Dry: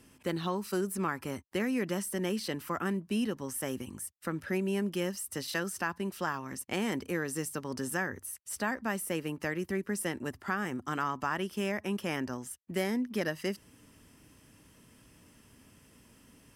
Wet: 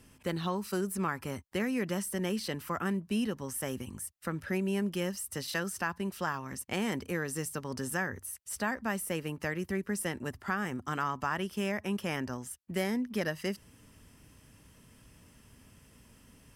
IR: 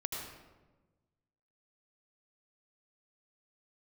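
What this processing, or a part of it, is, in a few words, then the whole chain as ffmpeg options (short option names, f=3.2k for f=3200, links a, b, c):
low shelf boost with a cut just above: -af "lowshelf=f=98:g=7.5,equalizer=f=310:t=o:w=0.6:g=-4"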